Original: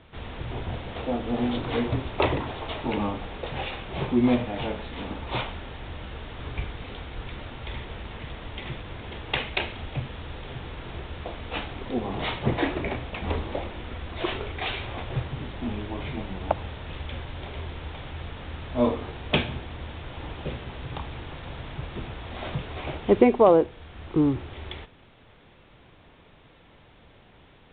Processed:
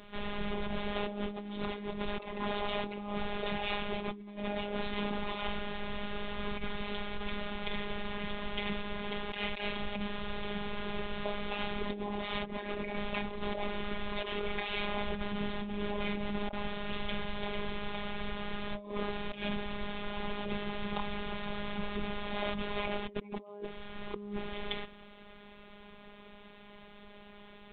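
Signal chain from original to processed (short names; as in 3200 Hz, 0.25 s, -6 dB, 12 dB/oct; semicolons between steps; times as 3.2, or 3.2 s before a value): robotiser 205 Hz; negative-ratio compressor -36 dBFS, ratio -1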